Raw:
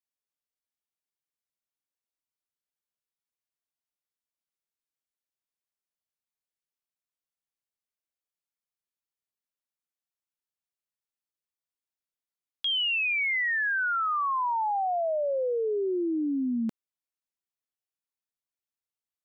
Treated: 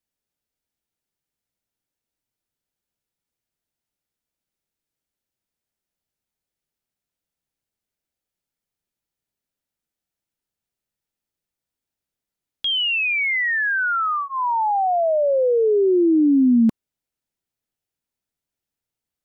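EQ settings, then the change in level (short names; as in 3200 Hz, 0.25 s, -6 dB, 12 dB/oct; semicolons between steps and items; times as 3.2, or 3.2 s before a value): low shelf 430 Hz +10.5 dB; notch 1100 Hz, Q 8.2; +5.5 dB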